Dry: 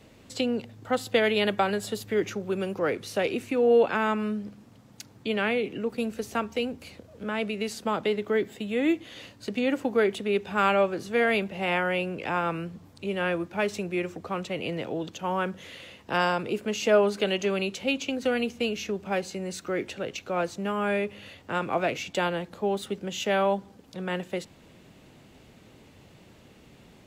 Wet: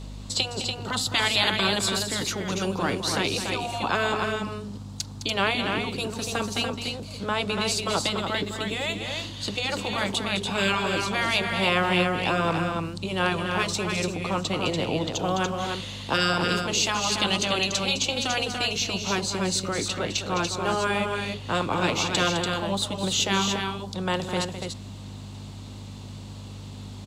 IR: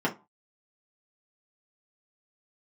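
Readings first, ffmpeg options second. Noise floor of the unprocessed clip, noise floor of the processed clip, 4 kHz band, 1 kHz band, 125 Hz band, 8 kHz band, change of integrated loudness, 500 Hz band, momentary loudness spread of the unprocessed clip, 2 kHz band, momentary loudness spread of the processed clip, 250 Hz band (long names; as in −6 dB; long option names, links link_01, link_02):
−54 dBFS, −39 dBFS, +10.5 dB, +3.0 dB, +7.5 dB, +13.0 dB, +2.5 dB, −3.0 dB, 11 LU, +4.0 dB, 11 LU, +0.5 dB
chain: -af "equalizer=frequency=125:width_type=o:width=1:gain=5,equalizer=frequency=250:width_type=o:width=1:gain=4,equalizer=frequency=1000:width_type=o:width=1:gain=10,equalizer=frequency=2000:width_type=o:width=1:gain=-4,equalizer=frequency=4000:width_type=o:width=1:gain=12,equalizer=frequency=8000:width_type=o:width=1:gain=10,aeval=exprs='val(0)+0.0141*(sin(2*PI*50*n/s)+sin(2*PI*2*50*n/s)/2+sin(2*PI*3*50*n/s)/3+sin(2*PI*4*50*n/s)/4+sin(2*PI*5*50*n/s)/5)':channel_layout=same,afftfilt=real='re*lt(hypot(re,im),0.447)':imag='im*lt(hypot(re,im),0.447)':win_size=1024:overlap=0.75,aecho=1:1:209.9|288.6:0.316|0.562"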